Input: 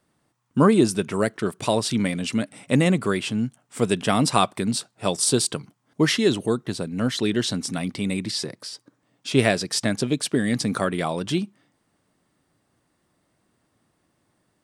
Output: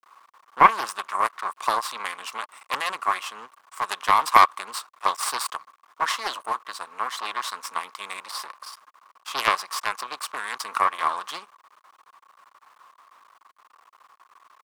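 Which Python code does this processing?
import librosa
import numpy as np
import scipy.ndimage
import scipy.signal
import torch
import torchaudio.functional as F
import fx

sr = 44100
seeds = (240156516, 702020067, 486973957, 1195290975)

y = fx.dmg_noise_colour(x, sr, seeds[0], colour='brown', level_db=-42.0)
y = np.maximum(y, 0.0)
y = fx.highpass_res(y, sr, hz=1100.0, q=8.9)
y = fx.doppler_dist(y, sr, depth_ms=0.29)
y = F.gain(torch.from_numpy(y), -1.5).numpy()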